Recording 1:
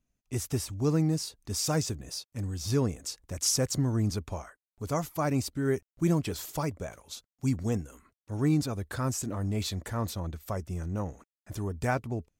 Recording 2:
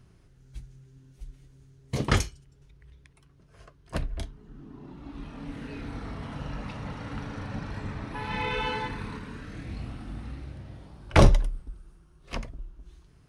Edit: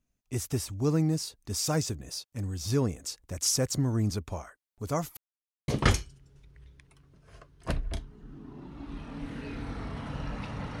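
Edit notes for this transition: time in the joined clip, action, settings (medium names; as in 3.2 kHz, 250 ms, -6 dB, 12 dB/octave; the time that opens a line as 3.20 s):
recording 1
5.17–5.68 s: mute
5.68 s: go over to recording 2 from 1.94 s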